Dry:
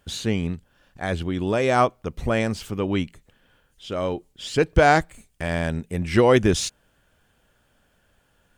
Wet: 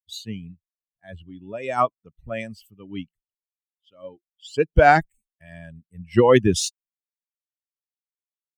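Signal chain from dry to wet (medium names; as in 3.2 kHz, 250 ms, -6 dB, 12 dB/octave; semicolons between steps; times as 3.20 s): expander on every frequency bin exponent 2; three bands expanded up and down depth 70%; trim -1.5 dB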